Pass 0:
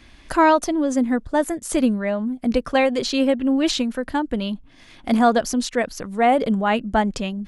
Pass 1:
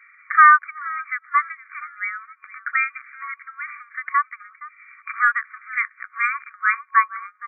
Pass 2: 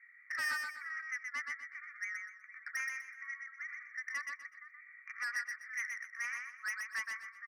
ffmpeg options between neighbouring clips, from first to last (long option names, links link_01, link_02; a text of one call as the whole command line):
ffmpeg -i in.wav -filter_complex "[0:a]afreqshift=260,asplit=4[link_01][link_02][link_03][link_04];[link_02]adelay=467,afreqshift=67,volume=-19dB[link_05];[link_03]adelay=934,afreqshift=134,volume=-27.2dB[link_06];[link_04]adelay=1401,afreqshift=201,volume=-35.4dB[link_07];[link_01][link_05][link_06][link_07]amix=inputs=4:normalize=0,afftfilt=real='re*between(b*sr/4096,1100,2400)':imag='im*between(b*sr/4096,1100,2400)':win_size=4096:overlap=0.75,volume=7dB" out.wav
ffmpeg -i in.wav -filter_complex "[0:a]bandpass=frequency=1900:width_type=q:width=11:csg=0,asoftclip=type=tanh:threshold=-30dB,asplit=2[link_01][link_02];[link_02]aecho=0:1:124|248|372|496:0.631|0.183|0.0531|0.0154[link_03];[link_01][link_03]amix=inputs=2:normalize=0,volume=-4dB" out.wav